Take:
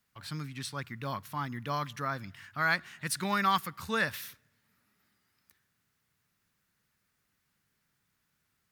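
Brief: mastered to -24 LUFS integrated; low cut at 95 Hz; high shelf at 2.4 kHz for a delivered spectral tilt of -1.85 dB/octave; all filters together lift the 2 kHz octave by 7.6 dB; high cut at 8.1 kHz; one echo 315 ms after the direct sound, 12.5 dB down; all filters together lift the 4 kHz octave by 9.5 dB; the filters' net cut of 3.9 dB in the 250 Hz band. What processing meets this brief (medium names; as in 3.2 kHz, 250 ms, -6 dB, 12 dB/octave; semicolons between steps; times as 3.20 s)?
high-pass 95 Hz; low-pass 8.1 kHz; peaking EQ 250 Hz -5.5 dB; peaking EQ 2 kHz +6 dB; treble shelf 2.4 kHz +7.5 dB; peaking EQ 4 kHz +3.5 dB; delay 315 ms -12.5 dB; trim +3.5 dB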